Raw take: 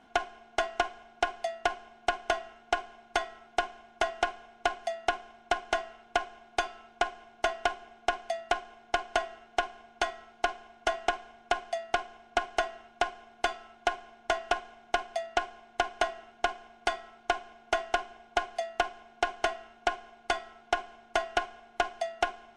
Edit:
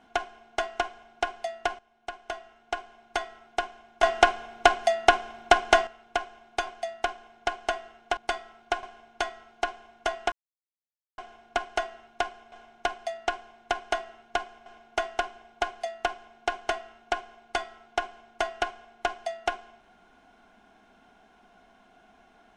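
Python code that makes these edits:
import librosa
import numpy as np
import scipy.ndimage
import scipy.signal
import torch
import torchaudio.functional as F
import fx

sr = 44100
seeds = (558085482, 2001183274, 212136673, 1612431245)

y = fx.edit(x, sr, fx.fade_in_from(start_s=1.79, length_s=1.5, floor_db=-15.0),
    fx.clip_gain(start_s=4.03, length_s=1.84, db=10.0),
    fx.cut(start_s=6.67, length_s=1.47),
    fx.silence(start_s=11.13, length_s=0.86),
    fx.cut(start_s=13.33, length_s=1.28),
    fx.move(start_s=16.75, length_s=0.66, to_s=9.64), tone=tone)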